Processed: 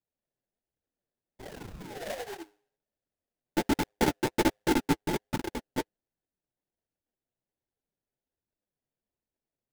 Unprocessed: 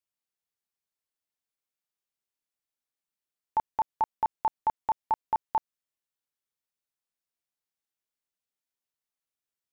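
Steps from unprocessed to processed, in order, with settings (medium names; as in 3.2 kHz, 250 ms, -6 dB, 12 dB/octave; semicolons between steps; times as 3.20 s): chunks repeated in reverse 135 ms, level 0 dB; high-pass sweep 520 Hz -> 1.4 kHz, 2.54–6.13 s; painted sound fall, 1.39–2.43 s, 320–2200 Hz -35 dBFS; peaking EQ 580 Hz +10.5 dB 0.34 oct; de-hum 103.5 Hz, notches 5; chorus voices 6, 0.23 Hz, delay 12 ms, depth 2.6 ms; peaking EQ 1.9 kHz -3 dB 0.6 oct; sample-rate reducer 1.2 kHz, jitter 20%; flange 1.3 Hz, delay 0.5 ms, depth 8 ms, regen -27%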